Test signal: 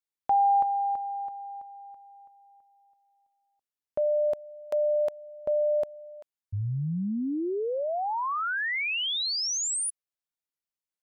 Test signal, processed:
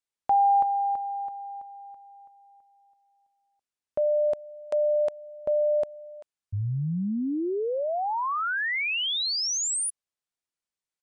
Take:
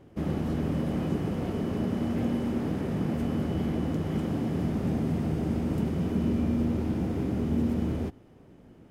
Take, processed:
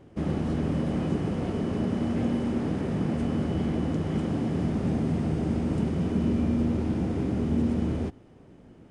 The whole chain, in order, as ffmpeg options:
-af "aresample=22050,aresample=44100,volume=1.5dB"

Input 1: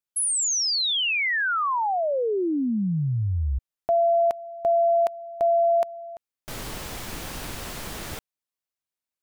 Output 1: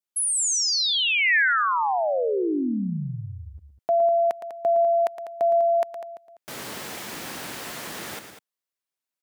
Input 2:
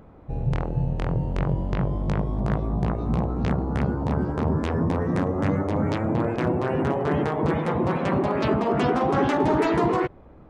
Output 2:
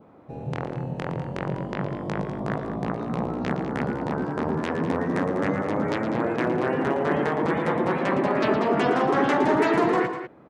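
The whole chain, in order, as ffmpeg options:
-af "highpass=190,adynamicequalizer=threshold=0.00562:dfrequency=1800:dqfactor=2.4:tfrequency=1800:tqfactor=2.4:attack=5:release=100:ratio=0.375:range=2.5:mode=boostabove:tftype=bell,aecho=1:1:113.7|198.3:0.316|0.282"

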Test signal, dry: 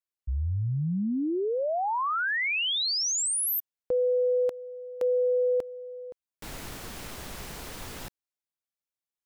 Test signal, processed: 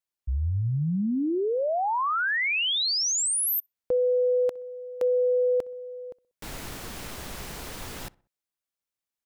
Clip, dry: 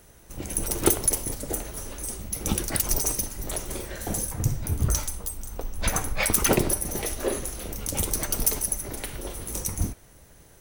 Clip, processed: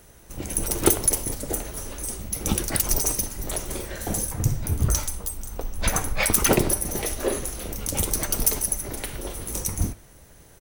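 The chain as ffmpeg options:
-filter_complex "[0:a]asplit=2[a][b];[b]adelay=63,lowpass=f=2.1k:p=1,volume=-23.5dB,asplit=2[c][d];[d]adelay=63,lowpass=f=2.1k:p=1,volume=0.46,asplit=2[e][f];[f]adelay=63,lowpass=f=2.1k:p=1,volume=0.46[g];[a][c][e][g]amix=inputs=4:normalize=0,volume=2dB"

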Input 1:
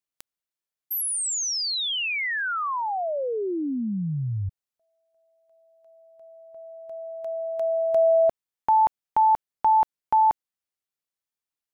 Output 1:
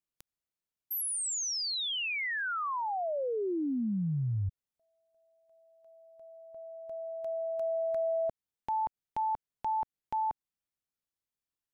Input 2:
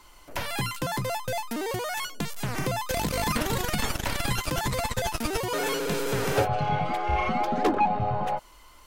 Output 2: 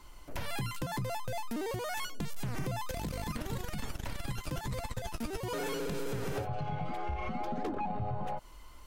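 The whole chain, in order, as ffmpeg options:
-af "lowshelf=f=310:g=9.5,acompressor=threshold=-24dB:ratio=6:attack=0.31:release=144:knee=6:detection=rms,volume=-5dB"

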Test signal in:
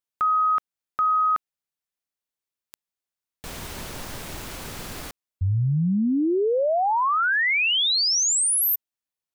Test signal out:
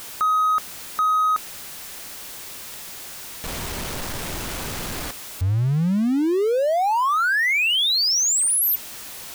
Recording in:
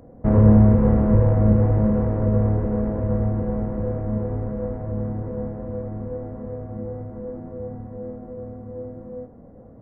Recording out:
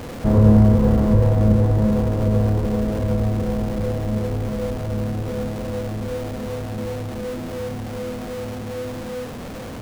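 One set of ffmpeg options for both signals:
-af "aeval=exprs='val(0)+0.5*0.0376*sgn(val(0))':c=same"

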